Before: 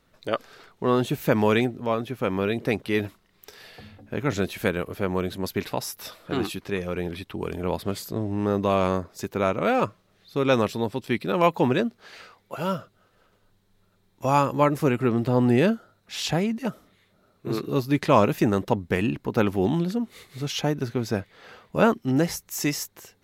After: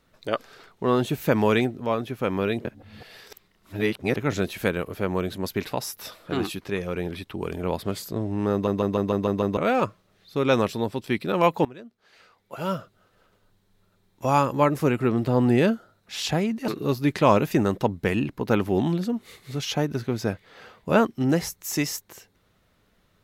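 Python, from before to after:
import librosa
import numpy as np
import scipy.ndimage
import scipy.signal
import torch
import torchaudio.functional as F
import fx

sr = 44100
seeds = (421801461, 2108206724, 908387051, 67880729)

y = fx.edit(x, sr, fx.reverse_span(start_s=2.65, length_s=1.51),
    fx.stutter_over(start_s=8.52, slice_s=0.15, count=7),
    fx.fade_in_from(start_s=11.65, length_s=1.09, curve='qua', floor_db=-21.0),
    fx.cut(start_s=16.68, length_s=0.87), tone=tone)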